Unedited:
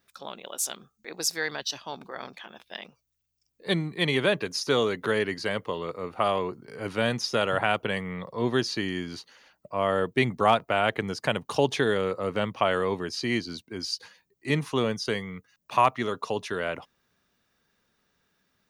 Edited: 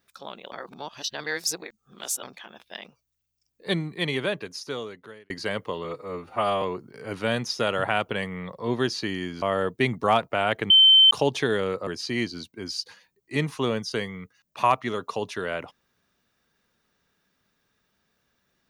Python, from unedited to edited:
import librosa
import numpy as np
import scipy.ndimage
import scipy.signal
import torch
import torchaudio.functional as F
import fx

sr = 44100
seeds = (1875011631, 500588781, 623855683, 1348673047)

y = fx.edit(x, sr, fx.reverse_span(start_s=0.52, length_s=1.71),
    fx.fade_out_span(start_s=3.75, length_s=1.55),
    fx.stretch_span(start_s=5.84, length_s=0.52, factor=1.5),
    fx.cut(start_s=9.16, length_s=0.63),
    fx.bleep(start_s=11.07, length_s=0.41, hz=3090.0, db=-11.0),
    fx.cut(start_s=12.24, length_s=0.77), tone=tone)